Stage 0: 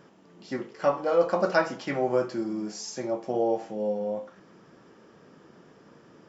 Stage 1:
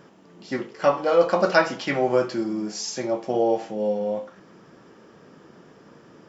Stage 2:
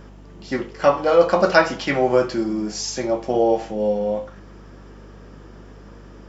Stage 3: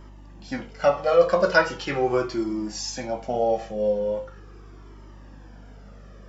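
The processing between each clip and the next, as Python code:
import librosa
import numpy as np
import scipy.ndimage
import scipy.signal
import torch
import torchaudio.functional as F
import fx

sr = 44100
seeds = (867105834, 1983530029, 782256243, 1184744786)

y1 = fx.dynamic_eq(x, sr, hz=3300.0, q=0.81, threshold_db=-48.0, ratio=4.0, max_db=6)
y1 = y1 * librosa.db_to_amplitude(4.0)
y2 = fx.add_hum(y1, sr, base_hz=50, snr_db=22)
y2 = y2 * librosa.db_to_amplitude(3.5)
y3 = fx.comb_cascade(y2, sr, direction='falling', hz=0.4)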